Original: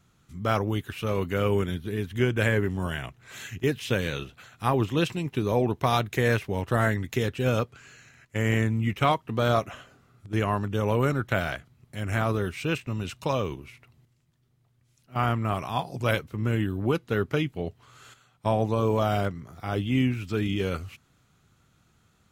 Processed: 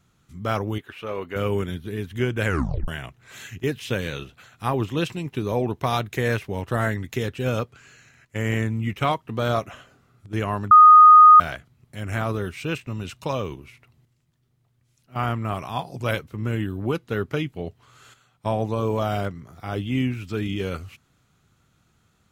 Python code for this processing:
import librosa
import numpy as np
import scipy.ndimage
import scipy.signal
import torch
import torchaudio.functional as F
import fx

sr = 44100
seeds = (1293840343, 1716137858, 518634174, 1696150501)

y = fx.bass_treble(x, sr, bass_db=-13, treble_db=-12, at=(0.78, 1.36))
y = fx.edit(y, sr, fx.tape_stop(start_s=2.45, length_s=0.43),
    fx.bleep(start_s=10.71, length_s=0.69, hz=1240.0, db=-6.0), tone=tone)